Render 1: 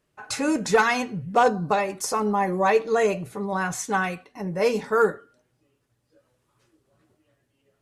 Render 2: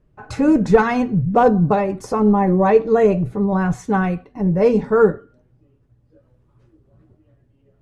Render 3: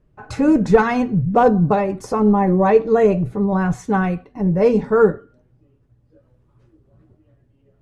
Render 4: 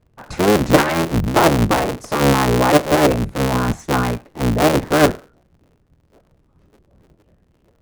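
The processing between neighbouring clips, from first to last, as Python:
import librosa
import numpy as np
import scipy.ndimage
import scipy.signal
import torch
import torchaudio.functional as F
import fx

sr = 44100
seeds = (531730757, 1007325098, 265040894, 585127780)

y1 = fx.tilt_eq(x, sr, slope=-4.5)
y1 = y1 * 10.0 ** (2.0 / 20.0)
y2 = y1
y3 = fx.cycle_switch(y2, sr, every=3, mode='inverted')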